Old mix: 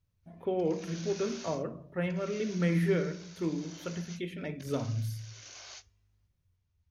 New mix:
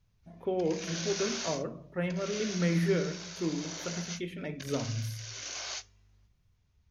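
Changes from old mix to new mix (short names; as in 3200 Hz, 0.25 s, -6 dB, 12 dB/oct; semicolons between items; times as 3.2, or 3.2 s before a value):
background +9.5 dB; master: add bell 86 Hz -10 dB 0.33 oct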